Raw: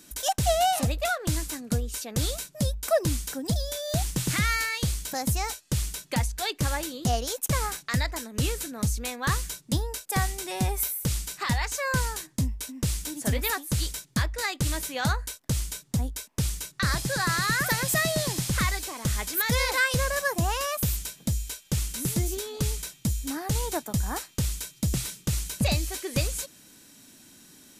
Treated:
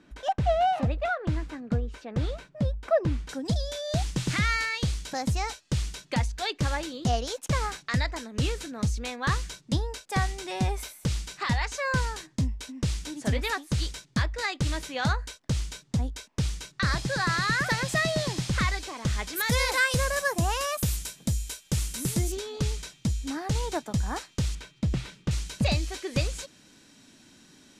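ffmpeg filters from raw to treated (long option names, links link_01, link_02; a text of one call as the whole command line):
ffmpeg -i in.wav -af "asetnsamples=nb_out_samples=441:pad=0,asendcmd='3.29 lowpass f 5400;19.36 lowpass f 11000;22.32 lowpass f 5800;24.55 lowpass f 3000;25.31 lowpass f 5600',lowpass=2000" out.wav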